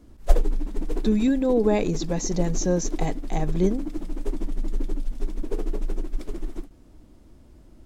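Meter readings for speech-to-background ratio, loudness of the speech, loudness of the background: 8.0 dB, -25.0 LUFS, -33.0 LUFS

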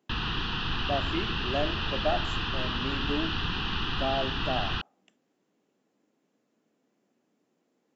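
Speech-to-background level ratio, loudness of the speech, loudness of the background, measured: -4.0 dB, -34.5 LUFS, -30.5 LUFS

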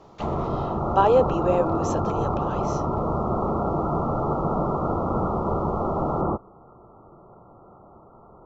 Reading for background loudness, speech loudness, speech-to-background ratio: -26.0 LUFS, -24.5 LUFS, 1.5 dB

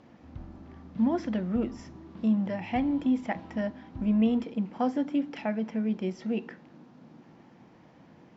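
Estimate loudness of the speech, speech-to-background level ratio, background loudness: -29.5 LUFS, 18.0 dB, -47.5 LUFS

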